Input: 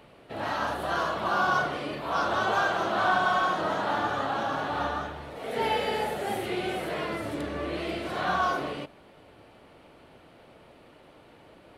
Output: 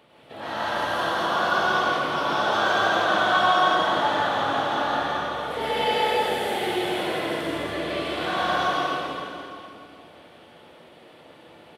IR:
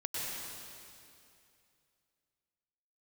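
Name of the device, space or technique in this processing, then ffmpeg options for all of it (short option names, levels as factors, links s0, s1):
PA in a hall: -filter_complex "[0:a]highpass=f=190:p=1,equalizer=f=3400:t=o:w=0.2:g=7,aecho=1:1:166:0.562[s0];[1:a]atrim=start_sample=2205[s1];[s0][s1]afir=irnorm=-1:irlink=0"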